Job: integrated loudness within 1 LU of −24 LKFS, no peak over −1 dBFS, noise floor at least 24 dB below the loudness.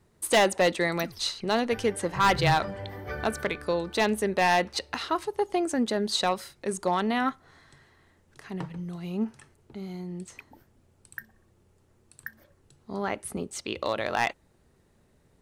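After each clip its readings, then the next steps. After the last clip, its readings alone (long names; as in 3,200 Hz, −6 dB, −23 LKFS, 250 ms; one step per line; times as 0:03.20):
share of clipped samples 0.4%; peaks flattened at −16.0 dBFS; integrated loudness −27.5 LKFS; sample peak −16.0 dBFS; target loudness −24.0 LKFS
→ clipped peaks rebuilt −16 dBFS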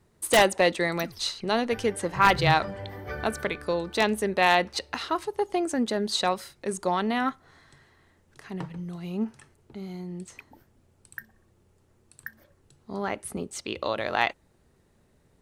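share of clipped samples 0.0%; integrated loudness −26.5 LKFS; sample peak −7.0 dBFS; target loudness −24.0 LKFS
→ level +2.5 dB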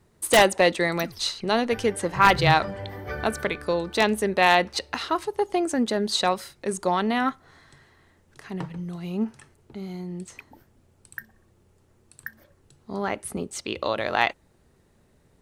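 integrated loudness −24.0 LKFS; sample peak −4.5 dBFS; background noise floor −62 dBFS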